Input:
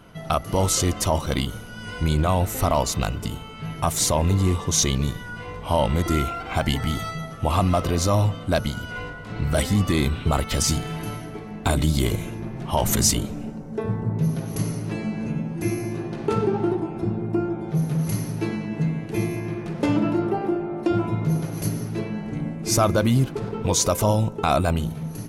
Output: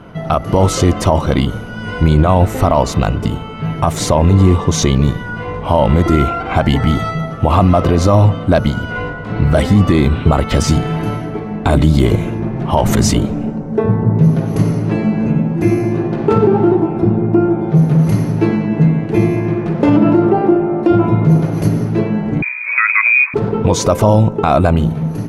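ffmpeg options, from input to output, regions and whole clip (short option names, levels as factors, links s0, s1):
-filter_complex "[0:a]asettb=1/sr,asplit=3[s0][s1][s2];[s0]atrim=end=22.424[s3];[s1]atrim=start=22.42:end=23.34,asetpts=PTS-STARTPTS,afade=t=in:d=0.004:c=qsin,afade=t=out:st=0.916:d=0.004:c=qsin,lowpass=f=2200:t=q:w=0.5098,lowpass=f=2200:t=q:w=0.6013,lowpass=f=2200:t=q:w=0.9,lowpass=f=2200:t=q:w=2.563,afreqshift=-2600,highpass=f=930:w=0.5412,highpass=f=930:w=1.3066[s4];[s2]atrim=start=23.336[s5];[s3][s4]acrossfade=d=0.004:c1=hsin:c2=qsin[s6];[s6][s5]acrossfade=d=0.004:c1=qsin:c2=hsin,lowpass=f=1300:p=1,lowshelf=f=64:g=-6.5,alimiter=level_in=5.31:limit=0.891:release=50:level=0:latency=1,volume=0.891"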